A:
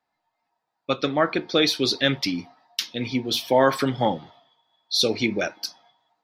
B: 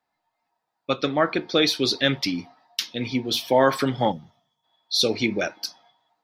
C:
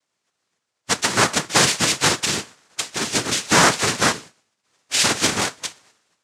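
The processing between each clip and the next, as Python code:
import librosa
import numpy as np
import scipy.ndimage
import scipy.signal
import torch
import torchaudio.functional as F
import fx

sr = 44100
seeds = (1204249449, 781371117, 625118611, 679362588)

y1 = fx.spec_box(x, sr, start_s=4.11, length_s=0.53, low_hz=240.0, high_hz=5200.0, gain_db=-12)
y2 = fx.spec_flatten(y1, sr, power=0.27)
y2 = fx.noise_vocoder(y2, sr, seeds[0], bands=3)
y2 = F.gain(torch.from_numpy(y2), 4.5).numpy()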